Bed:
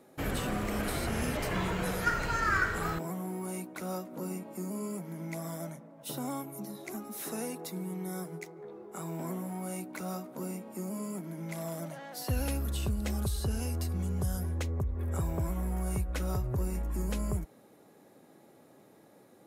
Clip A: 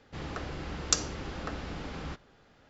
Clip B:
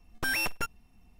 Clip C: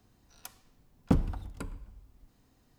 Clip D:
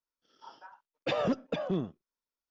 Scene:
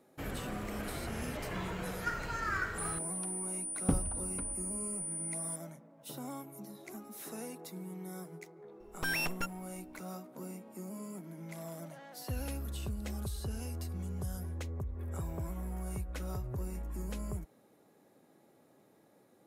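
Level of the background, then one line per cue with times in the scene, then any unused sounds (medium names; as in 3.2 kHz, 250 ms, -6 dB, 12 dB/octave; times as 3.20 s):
bed -6.5 dB
2.78 s: add C -5 dB + class-D stage that switches slowly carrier 9.4 kHz
8.80 s: add B -4.5 dB
not used: A, D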